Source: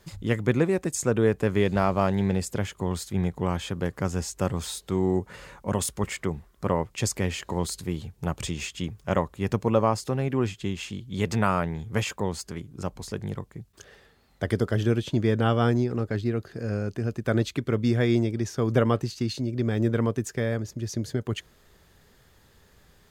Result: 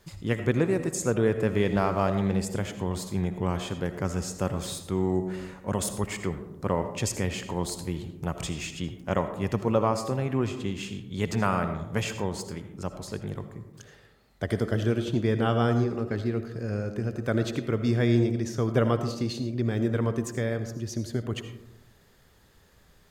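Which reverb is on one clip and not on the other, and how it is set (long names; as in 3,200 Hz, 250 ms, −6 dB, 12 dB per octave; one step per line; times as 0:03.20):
comb and all-pass reverb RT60 0.96 s, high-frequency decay 0.3×, pre-delay 40 ms, DRR 8.5 dB
level −2 dB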